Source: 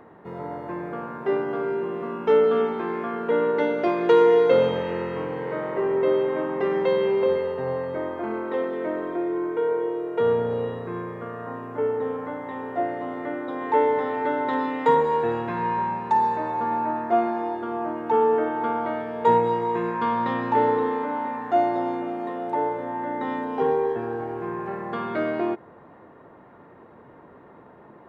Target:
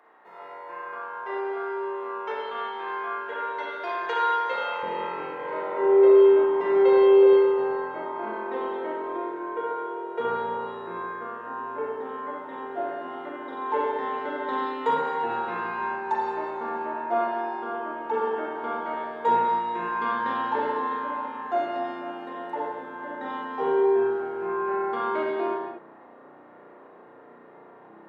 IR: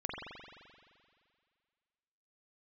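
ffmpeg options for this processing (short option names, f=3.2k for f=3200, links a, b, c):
-filter_complex "[0:a]asetnsamples=n=441:p=0,asendcmd='4.83 highpass f 260',highpass=820[a];[1:a]atrim=start_sample=2205,afade=t=out:st=0.37:d=0.01,atrim=end_sample=16758,asetrate=57330,aresample=44100[b];[a][b]afir=irnorm=-1:irlink=0"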